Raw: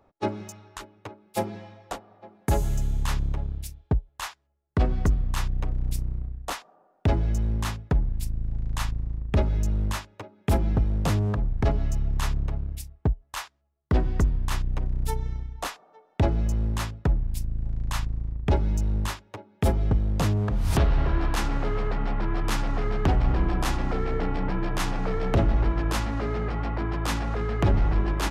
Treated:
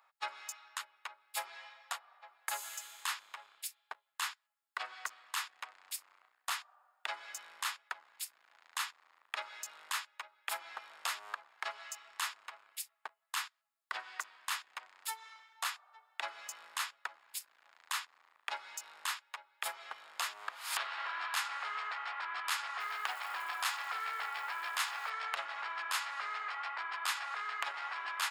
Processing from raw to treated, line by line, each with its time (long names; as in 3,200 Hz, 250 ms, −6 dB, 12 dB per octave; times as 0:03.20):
0:22.80–0:25.10: mu-law and A-law mismatch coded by mu
whole clip: high-pass filter 1,100 Hz 24 dB per octave; notch filter 5,900 Hz, Q 7.6; downward compressor 1.5 to 1, threshold −43 dBFS; level +3 dB